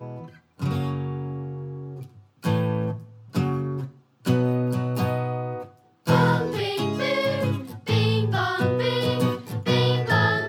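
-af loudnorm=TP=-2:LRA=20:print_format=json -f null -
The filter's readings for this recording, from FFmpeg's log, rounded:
"input_i" : "-24.2",
"input_tp" : "-6.9",
"input_lra" : "6.3",
"input_thresh" : "-34.7",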